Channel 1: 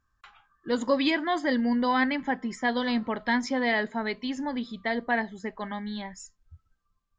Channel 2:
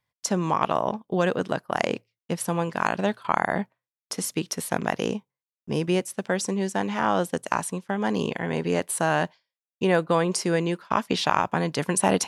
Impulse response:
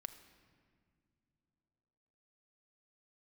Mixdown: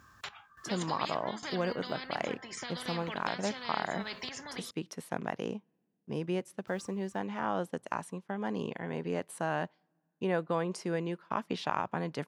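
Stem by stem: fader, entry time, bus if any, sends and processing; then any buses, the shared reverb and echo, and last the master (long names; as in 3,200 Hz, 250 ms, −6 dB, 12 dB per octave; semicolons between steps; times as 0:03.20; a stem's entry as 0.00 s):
+1.0 dB, 0.00 s, muted 0:04.71–0:06.67, no send, downward compressor 6 to 1, threshold −36 dBFS, peak gain reduction 16.5 dB; sample-and-hold tremolo, depth 90%; every bin compressed towards the loudest bin 4 to 1
−9.5 dB, 0.40 s, send −23.5 dB, high-shelf EQ 4,000 Hz −10.5 dB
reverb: on, pre-delay 5 ms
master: high-pass filter 88 Hz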